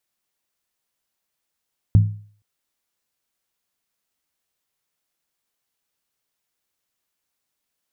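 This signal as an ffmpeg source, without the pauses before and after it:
-f lavfi -i "aevalsrc='0.473*pow(10,-3*t/0.47)*sin(2*PI*104*t)+0.15*pow(10,-3*t/0.372)*sin(2*PI*165.8*t)+0.0473*pow(10,-3*t/0.322)*sin(2*PI*222.1*t)+0.015*pow(10,-3*t/0.31)*sin(2*PI*238.8*t)+0.00473*pow(10,-3*t/0.289)*sin(2*PI*275.9*t)':d=0.47:s=44100"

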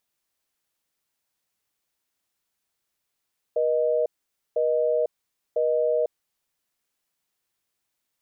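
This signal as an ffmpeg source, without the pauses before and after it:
-f lavfi -i "aevalsrc='0.075*(sin(2*PI*480*t)+sin(2*PI*620*t))*clip(min(mod(t,1),0.5-mod(t,1))/0.005,0,1)':d=2.93:s=44100"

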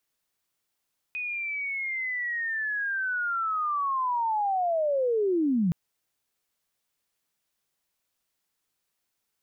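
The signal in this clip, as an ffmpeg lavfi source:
-f lavfi -i "aevalsrc='pow(10,(-29.5+8.5*t/4.57)/20)*sin(2*PI*(2500*t-2340*t*t/(2*4.57)))':d=4.57:s=44100"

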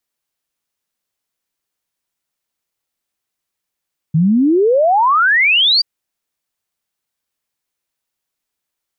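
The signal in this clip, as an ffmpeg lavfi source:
-f lavfi -i "aevalsrc='0.355*clip(min(t,1.68-t)/0.01,0,1)*sin(2*PI*150*1.68/log(4800/150)*(exp(log(4800/150)*t/1.68)-1))':d=1.68:s=44100"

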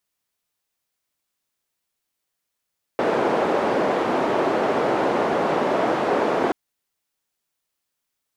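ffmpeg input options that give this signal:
-f lavfi -i "anoisesrc=c=white:d=3.53:r=44100:seed=1,highpass=f=330,lowpass=f=600,volume=2dB"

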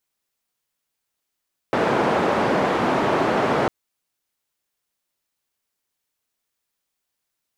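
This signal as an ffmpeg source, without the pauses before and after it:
-f lavfi -i "anoisesrc=c=white:d=1.95:r=44100:seed=1,highpass=f=170,lowpass=f=850,volume=-0.6dB"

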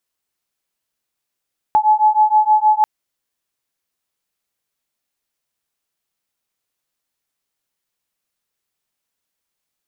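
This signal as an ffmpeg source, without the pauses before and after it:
-f lavfi -i "aevalsrc='0.211*(sin(2*PI*853*t)+sin(2*PI*859.4*t))':d=1.09:s=44100"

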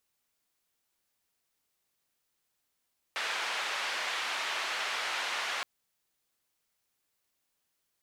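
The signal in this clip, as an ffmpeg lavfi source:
-f lavfi -i "anoisesrc=c=white:d=2.47:r=44100:seed=1,highpass=f=790,lowpass=f=2800,volume=-19.2dB"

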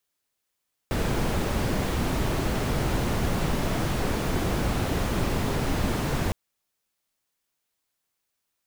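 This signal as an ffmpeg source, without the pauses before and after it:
-f lavfi -i "anoisesrc=c=brown:a=0.263:d=5.41:r=44100:seed=1"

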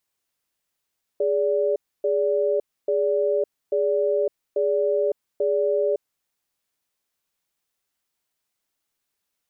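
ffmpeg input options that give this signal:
-f lavfi -i "aevalsrc='0.0841*(sin(2*PI*414*t)+sin(2*PI*579*t))*clip(min(mod(t,0.84),0.56-mod(t,0.84))/0.005,0,1)':d=4.78:s=44100"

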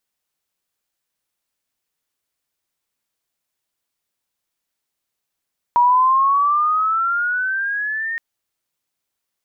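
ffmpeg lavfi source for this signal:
-f lavfi -i "aevalsrc='pow(10,(-10-11.5*t/2.42)/20)*sin(2*PI*954*2.42/(11.5*log(2)/12)*(exp(11.5*log(2)/12*t/2.42)-1))':d=2.42:s=44100"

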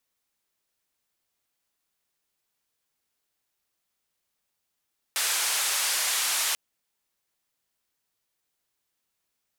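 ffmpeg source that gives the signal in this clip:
-f lavfi -i "anoisesrc=c=white:d=1.39:r=44100:seed=1,highpass=f=860,lowpass=f=11000,volume=-18.3dB"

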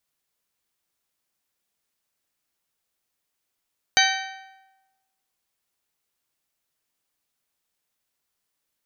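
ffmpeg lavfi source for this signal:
-f lavfi -i "aevalsrc='0.0944*pow(10,-3*t/1.12)*sin(2*PI*770*t)+0.0944*pow(10,-3*t/0.91)*sin(2*PI*1540*t)+0.0944*pow(10,-3*t/0.861)*sin(2*PI*1848*t)+0.0944*pow(10,-3*t/0.806)*sin(2*PI*2310*t)+0.0944*pow(10,-3*t/0.739)*sin(2*PI*3080*t)+0.0944*pow(10,-3*t/0.691)*sin(2*PI*3850*t)+0.0944*pow(10,-3*t/0.654)*sin(2*PI*4620*t)+0.0944*pow(10,-3*t/0.6)*sin(2*PI*6160*t)':d=1.55:s=44100"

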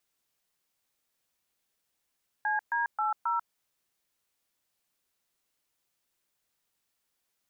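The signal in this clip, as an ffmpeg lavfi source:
-f lavfi -i "aevalsrc='0.0376*clip(min(mod(t,0.268),0.142-mod(t,0.268))/0.002,0,1)*(eq(floor(t/0.268),0)*(sin(2*PI*852*mod(t,0.268))+sin(2*PI*1633*mod(t,0.268)))+eq(floor(t/0.268),1)*(sin(2*PI*941*mod(t,0.268))+sin(2*PI*1633*mod(t,0.268)))+eq(floor(t/0.268),2)*(sin(2*PI*852*mod(t,0.268))+sin(2*PI*1336*mod(t,0.268)))+eq(floor(t/0.268),3)*(sin(2*PI*941*mod(t,0.268))+sin(2*PI*1336*mod(t,0.268))))':d=1.072:s=44100"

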